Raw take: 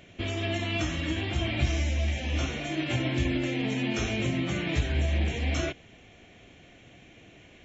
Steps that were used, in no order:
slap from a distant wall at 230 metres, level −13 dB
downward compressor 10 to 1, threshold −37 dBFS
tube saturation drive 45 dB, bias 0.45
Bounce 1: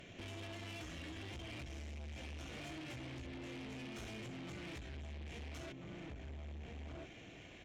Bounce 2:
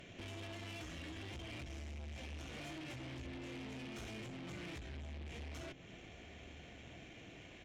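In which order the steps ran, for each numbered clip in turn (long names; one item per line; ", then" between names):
slap from a distant wall, then downward compressor, then tube saturation
downward compressor, then tube saturation, then slap from a distant wall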